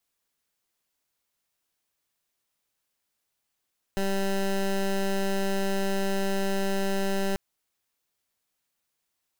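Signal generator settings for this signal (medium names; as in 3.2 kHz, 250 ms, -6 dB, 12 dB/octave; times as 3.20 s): pulse 195 Hz, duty 17% -26 dBFS 3.39 s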